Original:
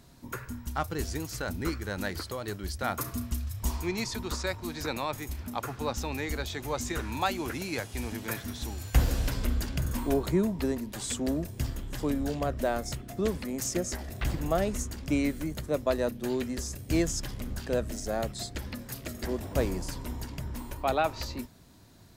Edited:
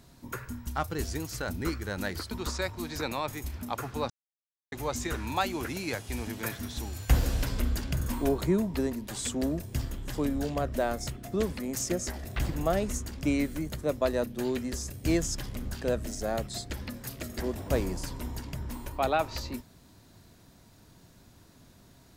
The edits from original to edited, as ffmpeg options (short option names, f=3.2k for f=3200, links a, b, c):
-filter_complex "[0:a]asplit=4[a][b][c][d];[a]atrim=end=2.312[e];[b]atrim=start=4.158:end=5.95,asetpts=PTS-STARTPTS,afade=t=out:st=1.788:d=0.004:c=hsin[f];[c]atrim=start=5.95:end=6.57,asetpts=PTS-STARTPTS,volume=0[g];[d]atrim=start=6.57,asetpts=PTS-STARTPTS,afade=t=in:d=0.004:c=hsin[h];[f][g][h]concat=n=3:v=0:a=1[i];[e][i]acrossfade=d=0.004:c1=hsin:c2=hsin"